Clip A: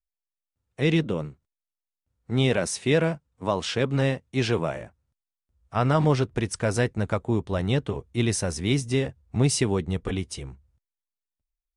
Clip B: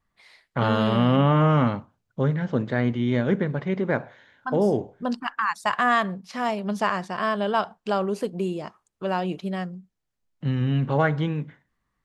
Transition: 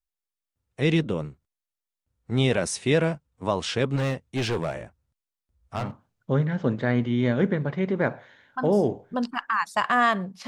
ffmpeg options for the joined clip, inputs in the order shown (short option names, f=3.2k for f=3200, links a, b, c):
-filter_complex "[0:a]asettb=1/sr,asplit=3[a][b][c];[a]atrim=end=3.964[d];[b]atrim=start=3.96:end=5.92,asetpts=PTS-STARTPTS,afade=t=in:d=0.004:c=qsin,afade=t=out:st=1.956:d=0.004:c=qsin,asoftclip=type=hard:threshold=-22dB[e];[c]atrim=start=5.916[f];[d][e]acrossfade=d=0.004:c1=hsin:c2=qsin[g];[g][f]acrossfade=d=0.004:c1=qsin:c2=hsin,apad=whole_dur=10.47,atrim=end=10.47,atrim=end=5.92,asetpts=PTS-STARTPTS[h];[1:a]atrim=start=1.63:end=6.36,asetpts=PTS-STARTPTS[i];[h][i]acrossfade=d=0.18:c1=tri:c2=tri"